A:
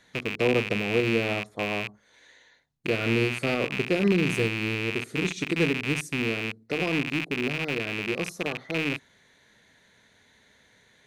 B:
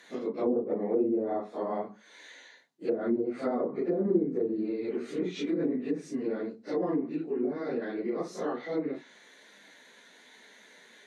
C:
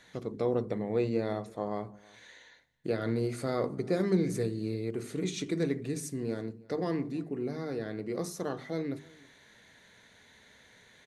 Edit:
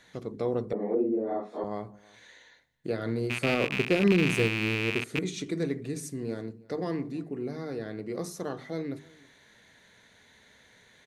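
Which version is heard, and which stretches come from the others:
C
0:00.73–0:01.64: punch in from B
0:03.30–0:05.19: punch in from A

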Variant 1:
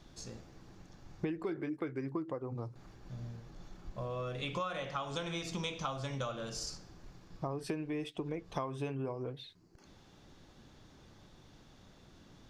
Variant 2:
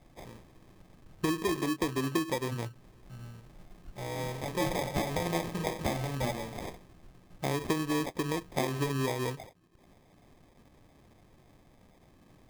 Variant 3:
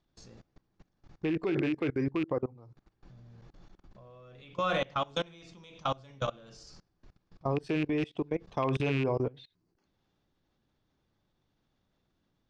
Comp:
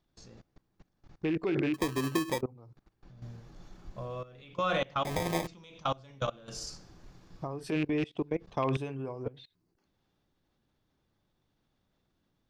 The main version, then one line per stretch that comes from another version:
3
0:01.74–0:02.41: punch in from 2
0:03.22–0:04.23: punch in from 1
0:05.05–0:05.47: punch in from 2
0:06.48–0:07.72: punch in from 1
0:08.77–0:09.26: punch in from 1

